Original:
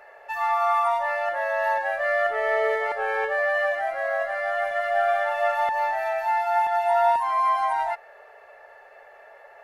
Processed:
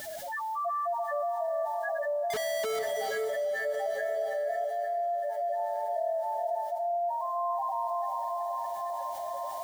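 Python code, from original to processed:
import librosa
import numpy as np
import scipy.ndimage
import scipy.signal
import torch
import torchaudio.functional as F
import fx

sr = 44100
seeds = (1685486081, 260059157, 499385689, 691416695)

y = fx.spec_topn(x, sr, count=1)
y = fx.notch_comb(y, sr, f0_hz=860.0)
y = fx.dmg_noise_colour(y, sr, seeds[0], colour='white', level_db=-72.0)
y = fx.peak_eq(y, sr, hz=1100.0, db=-10.0, octaves=0.48)
y = fx.schmitt(y, sr, flips_db=-57.5, at=(2.3, 2.79))
y = fx.notch(y, sr, hz=2600.0, q=7.6)
y = fx.echo_diffused(y, sr, ms=463, feedback_pct=58, wet_db=-7.5)
y = fx.rider(y, sr, range_db=3, speed_s=0.5)
y = fx.highpass(y, sr, hz=420.0, slope=6, at=(4.64, 5.6))
y = fx.env_flatten(y, sr, amount_pct=70)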